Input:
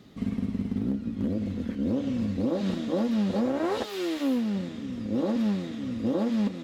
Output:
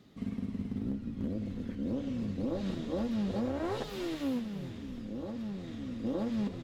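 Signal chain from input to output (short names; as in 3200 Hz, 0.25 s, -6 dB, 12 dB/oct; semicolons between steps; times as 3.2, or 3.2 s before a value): 4.39–5.68 compressor 3:1, threshold -31 dBFS, peak gain reduction 6.5 dB; frequency-shifting echo 0.318 s, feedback 54%, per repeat -120 Hz, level -12 dB; gain -7 dB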